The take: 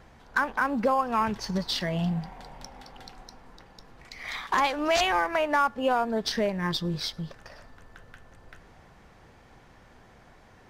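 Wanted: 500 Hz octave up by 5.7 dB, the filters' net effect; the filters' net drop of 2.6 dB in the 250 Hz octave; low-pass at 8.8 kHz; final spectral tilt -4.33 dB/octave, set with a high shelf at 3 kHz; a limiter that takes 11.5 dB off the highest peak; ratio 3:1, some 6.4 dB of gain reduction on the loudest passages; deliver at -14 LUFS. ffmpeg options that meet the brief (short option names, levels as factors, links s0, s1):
-af "lowpass=8800,equalizer=f=250:t=o:g=-6,equalizer=f=500:t=o:g=8,highshelf=f=3000:g=7.5,acompressor=threshold=0.0708:ratio=3,volume=9.44,alimiter=limit=0.596:level=0:latency=1"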